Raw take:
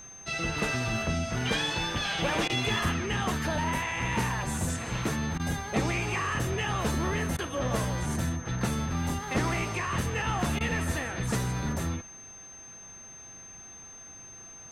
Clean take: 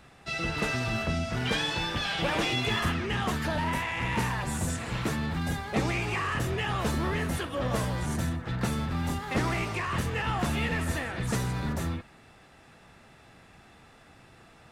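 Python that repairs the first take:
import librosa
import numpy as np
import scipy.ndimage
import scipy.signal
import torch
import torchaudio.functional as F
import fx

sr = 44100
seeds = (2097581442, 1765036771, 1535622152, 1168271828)

y = fx.notch(x, sr, hz=6300.0, q=30.0)
y = fx.fix_interpolate(y, sr, at_s=(2.48, 5.38, 7.37, 10.59), length_ms=15.0)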